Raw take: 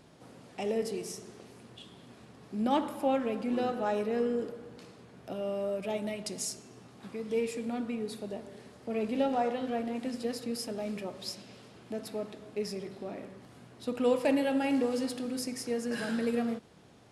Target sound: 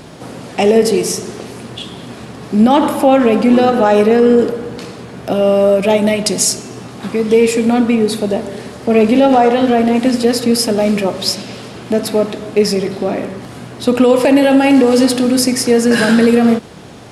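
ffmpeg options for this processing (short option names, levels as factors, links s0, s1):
-af "alimiter=level_in=15:limit=0.891:release=50:level=0:latency=1,volume=0.891"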